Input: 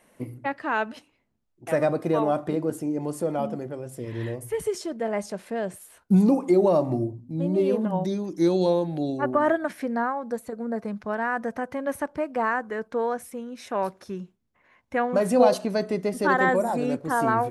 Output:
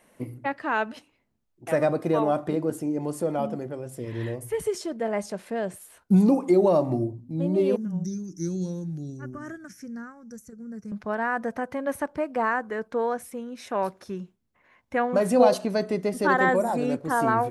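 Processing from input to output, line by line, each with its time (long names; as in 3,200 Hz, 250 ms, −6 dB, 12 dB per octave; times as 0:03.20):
0:07.76–0:10.92: drawn EQ curve 180 Hz 0 dB, 270 Hz −11 dB, 410 Hz −13 dB, 650 Hz −26 dB, 980 Hz −25 dB, 1,400 Hz −11 dB, 2,200 Hz −16 dB, 4,000 Hz −19 dB, 5,800 Hz +8 dB, 8,800 Hz −5 dB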